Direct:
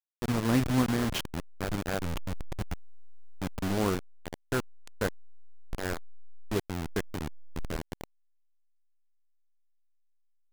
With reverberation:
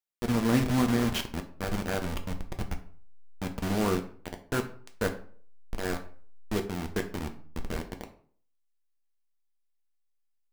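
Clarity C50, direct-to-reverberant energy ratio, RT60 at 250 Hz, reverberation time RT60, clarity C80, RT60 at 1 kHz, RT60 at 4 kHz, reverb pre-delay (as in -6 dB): 12.5 dB, 4.5 dB, 0.55 s, 0.50 s, 16.0 dB, 0.45 s, 0.35 s, 4 ms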